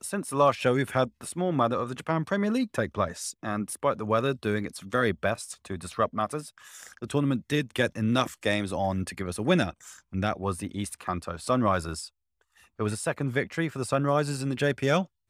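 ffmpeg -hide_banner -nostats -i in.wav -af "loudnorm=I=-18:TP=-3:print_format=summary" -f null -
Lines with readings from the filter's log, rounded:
Input Integrated:    -28.3 LUFS
Input True Peak:      -8.4 dBTP
Input LRA:             2.0 LU
Input Threshold:     -38.6 LUFS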